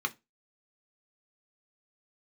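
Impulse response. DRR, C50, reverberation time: 4.5 dB, 23.0 dB, non-exponential decay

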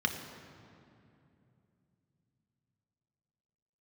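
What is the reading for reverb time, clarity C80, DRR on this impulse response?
2.7 s, 8.0 dB, 3.5 dB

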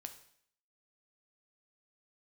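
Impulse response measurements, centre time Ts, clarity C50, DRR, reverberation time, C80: 10 ms, 11.5 dB, 6.5 dB, 0.60 s, 14.5 dB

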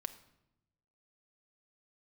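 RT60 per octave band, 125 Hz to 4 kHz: 1.4, 1.2, 0.95, 0.80, 0.70, 0.65 seconds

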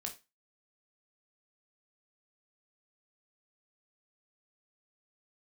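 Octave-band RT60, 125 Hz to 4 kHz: 0.25, 0.25, 0.25, 0.25, 0.25, 0.25 seconds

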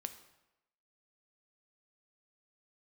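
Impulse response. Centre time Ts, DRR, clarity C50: 9 ms, 8.5 dB, 12.0 dB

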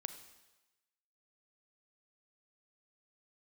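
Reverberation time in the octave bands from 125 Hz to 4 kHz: 0.95, 0.95, 1.0, 1.1, 1.1, 1.1 seconds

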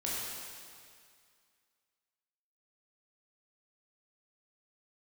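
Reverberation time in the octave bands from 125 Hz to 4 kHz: 2.1, 2.0, 2.1, 2.2, 2.2, 2.1 seconds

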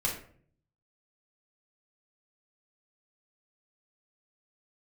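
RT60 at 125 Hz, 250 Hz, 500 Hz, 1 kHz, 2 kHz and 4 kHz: 0.95, 0.70, 0.60, 0.45, 0.45, 0.30 seconds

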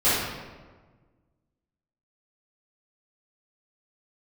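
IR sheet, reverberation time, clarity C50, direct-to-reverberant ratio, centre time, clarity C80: 1.4 s, −2.0 dB, −15.5 dB, 92 ms, 1.5 dB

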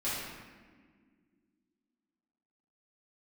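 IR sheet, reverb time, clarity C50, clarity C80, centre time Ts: 1.7 s, −1.5 dB, 1.5 dB, 99 ms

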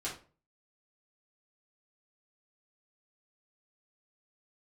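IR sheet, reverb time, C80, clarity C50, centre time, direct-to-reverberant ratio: 0.40 s, 13.5 dB, 7.5 dB, 24 ms, −7.5 dB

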